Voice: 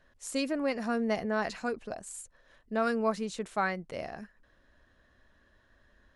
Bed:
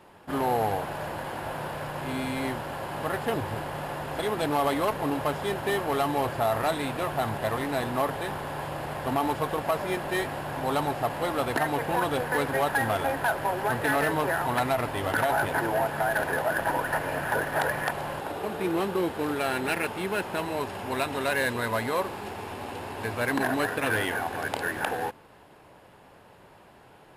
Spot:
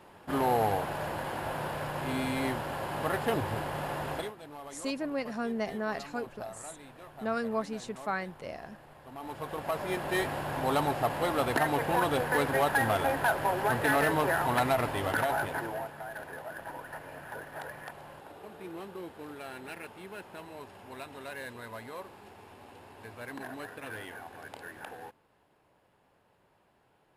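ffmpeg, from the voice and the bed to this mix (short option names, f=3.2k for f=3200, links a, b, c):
-filter_complex "[0:a]adelay=4500,volume=-3dB[a];[1:a]volume=18dB,afade=t=out:st=4.11:d=0.22:silence=0.112202,afade=t=in:st=9.13:d=1.11:silence=0.112202,afade=t=out:st=14.84:d=1.12:silence=0.199526[b];[a][b]amix=inputs=2:normalize=0"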